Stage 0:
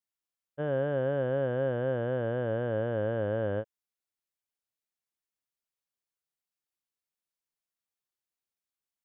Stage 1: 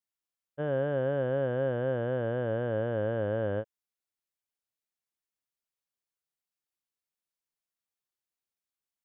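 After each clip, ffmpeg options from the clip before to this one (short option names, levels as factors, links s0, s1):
-af anull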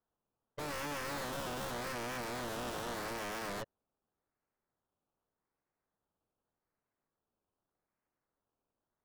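-af "acrusher=samples=17:mix=1:aa=0.000001:lfo=1:lforange=10.2:lforate=0.84,adynamicsmooth=sensitivity=5.5:basefreq=2500,aeval=exprs='0.0126*(abs(mod(val(0)/0.0126+3,4)-2)-1)':c=same,volume=1.41"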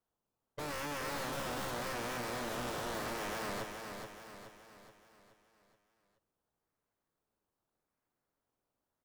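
-af "aecho=1:1:425|850|1275|1700|2125|2550:0.501|0.241|0.115|0.0554|0.0266|0.0128"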